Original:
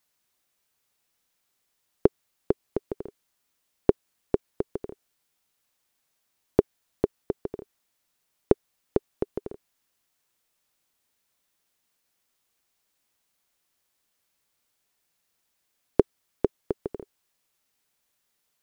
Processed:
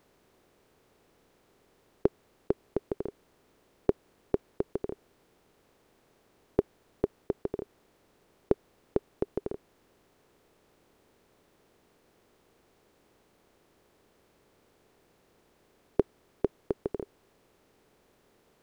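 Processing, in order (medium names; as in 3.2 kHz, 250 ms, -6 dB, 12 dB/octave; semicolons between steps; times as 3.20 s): spectral levelling over time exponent 0.6; trim -6.5 dB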